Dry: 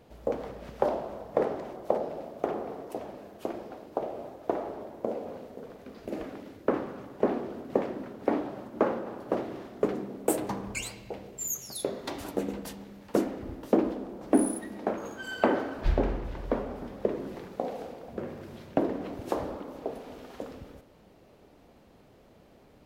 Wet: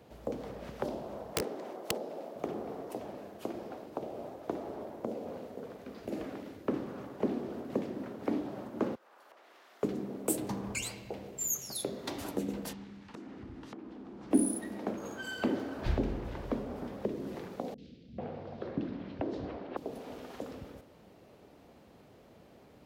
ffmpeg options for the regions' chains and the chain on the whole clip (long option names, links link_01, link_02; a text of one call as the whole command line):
ffmpeg -i in.wav -filter_complex "[0:a]asettb=1/sr,asplit=3[link_01][link_02][link_03];[link_01]atrim=end=1.334[link_04];[link_02]atrim=start=1.33:end=2.36,asetpts=PTS-STARTPTS,afade=type=in:duration=0.004:curve=qsin,afade=type=out:start_time=1.026:duration=0.004:curve=qsin,highpass=270,aeval=exprs='(mod(7.5*val(0)+1,2)-1)/7.5':channel_layout=same[link_05];[link_03]atrim=start=2.356[link_06];[link_04][link_05]acrossfade=duration=0.004:curve1=hsin:curve2=qsin[link_07];[link_07][link_06]acrossfade=duration=0.004:curve1=qsin:curve2=hsin,asettb=1/sr,asplit=3[link_08][link_09][link_10];[link_08]atrim=end=8.954[link_11];[link_09]atrim=start=8.95:end=9.83,asetpts=PTS-STARTPTS,afade=type=in:duration=0.004:curve=qsin,afade=type=out:start_time=0.876:duration=0.004:curve=qsin,highpass=1200,acompressor=threshold=-54dB:ratio=16:attack=3.2:release=140:knee=1:detection=peak[link_12];[link_10]atrim=start=9.826[link_13];[link_11][link_12]acrossfade=duration=0.004:curve1=hsin:curve2=qsin[link_14];[link_14][link_13]acrossfade=duration=0.004:curve1=qsin:curve2=hsin,asettb=1/sr,asplit=3[link_15][link_16][link_17];[link_15]atrim=end=12.734[link_18];[link_16]atrim=start=12.73:end=14.31,asetpts=PTS-STARTPTS,afade=type=in:duration=0.004:curve=qsin,afade=type=out:start_time=1.576:duration=0.004:curve=qsin,acompressor=threshold=-39dB:ratio=10:attack=3.2:release=140:knee=1:detection=peak,lowpass=5500,equalizer=frequency=560:width=1.7:gain=-11.5[link_19];[link_17]atrim=start=14.306[link_20];[link_18][link_19]acrossfade=duration=0.004:curve1=hsin:curve2=qsin[link_21];[link_21][link_20]acrossfade=duration=0.004:curve1=qsin:curve2=hsin,asettb=1/sr,asplit=3[link_22][link_23][link_24];[link_22]atrim=end=17.744[link_25];[link_23]atrim=start=17.74:end=19.77,asetpts=PTS-STARTPTS,afade=type=in:duration=0.004:curve=qsin,afade=type=out:start_time=2.026:duration=0.004:curve=qsin,lowpass=frequency=4400:width=0.5412,lowpass=frequency=4400:width=1.3066,acrossover=split=280|3000[link_26][link_27][link_28];[link_28]adelay=40[link_29];[link_27]adelay=440[link_30];[link_26][link_30][link_29]amix=inputs=3:normalize=0,atrim=end_sample=89523[link_31];[link_24]atrim=start=19.766[link_32];[link_25][link_31]acrossfade=duration=0.004:curve1=hsin:curve2=qsin[link_33];[link_33][link_32]acrossfade=duration=0.004:curve1=qsin:curve2=hsin,highpass=63,acrossover=split=340|3000[link_34][link_35][link_36];[link_35]acompressor=threshold=-39dB:ratio=6[link_37];[link_34][link_37][link_36]amix=inputs=3:normalize=0" out.wav